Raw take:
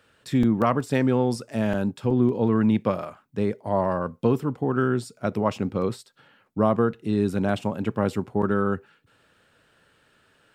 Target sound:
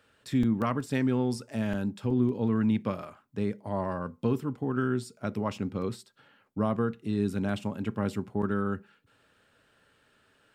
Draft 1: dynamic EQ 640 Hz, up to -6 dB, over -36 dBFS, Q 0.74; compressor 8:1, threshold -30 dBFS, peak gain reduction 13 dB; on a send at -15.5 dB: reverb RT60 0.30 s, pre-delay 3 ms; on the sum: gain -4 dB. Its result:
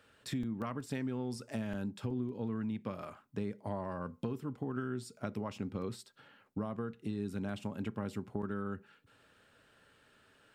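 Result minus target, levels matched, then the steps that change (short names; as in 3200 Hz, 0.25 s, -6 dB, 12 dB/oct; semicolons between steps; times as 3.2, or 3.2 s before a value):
compressor: peak gain reduction +13 dB
remove: compressor 8:1, threshold -30 dBFS, peak gain reduction 13 dB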